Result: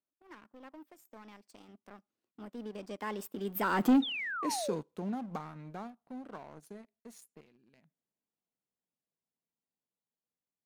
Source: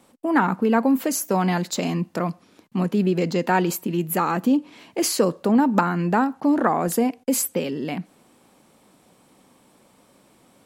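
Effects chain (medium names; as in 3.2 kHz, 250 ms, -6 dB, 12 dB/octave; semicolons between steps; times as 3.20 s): Doppler pass-by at 3.91 s, 46 m/s, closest 5.7 m; waveshaping leveller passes 2; painted sound fall, 4.02–4.74 s, 470–3800 Hz -29 dBFS; trim -8 dB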